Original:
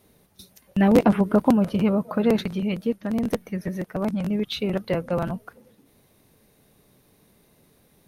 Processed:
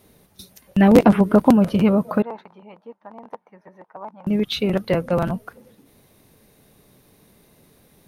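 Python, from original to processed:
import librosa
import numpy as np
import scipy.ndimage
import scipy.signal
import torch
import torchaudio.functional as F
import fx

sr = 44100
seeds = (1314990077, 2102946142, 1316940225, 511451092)

y = fx.bandpass_q(x, sr, hz=910.0, q=5.1, at=(2.22, 4.27))
y = y * 10.0 ** (4.5 / 20.0)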